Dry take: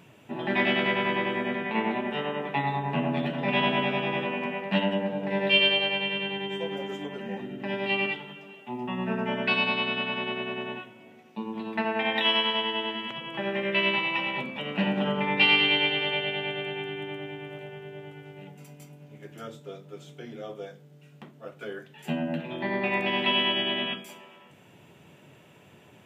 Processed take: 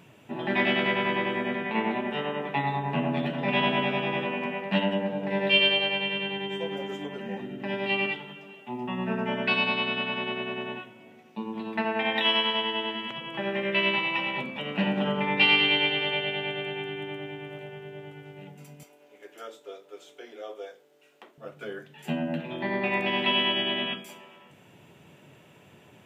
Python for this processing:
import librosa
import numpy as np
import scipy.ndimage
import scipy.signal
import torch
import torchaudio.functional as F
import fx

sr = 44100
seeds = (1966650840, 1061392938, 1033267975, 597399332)

y = fx.highpass(x, sr, hz=360.0, slope=24, at=(18.83, 21.38))